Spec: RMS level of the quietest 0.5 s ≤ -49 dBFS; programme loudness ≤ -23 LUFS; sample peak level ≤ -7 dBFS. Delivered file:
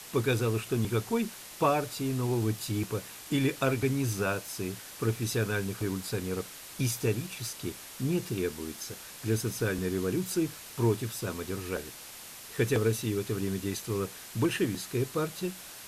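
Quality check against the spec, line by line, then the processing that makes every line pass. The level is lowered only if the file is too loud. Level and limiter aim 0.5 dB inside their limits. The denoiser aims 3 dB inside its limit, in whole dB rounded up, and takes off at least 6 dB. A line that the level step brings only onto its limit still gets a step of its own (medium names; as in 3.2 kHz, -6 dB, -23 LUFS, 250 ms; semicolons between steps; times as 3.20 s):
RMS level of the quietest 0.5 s -46 dBFS: fail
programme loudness -31.5 LUFS: pass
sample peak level -14.5 dBFS: pass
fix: noise reduction 6 dB, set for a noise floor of -46 dBFS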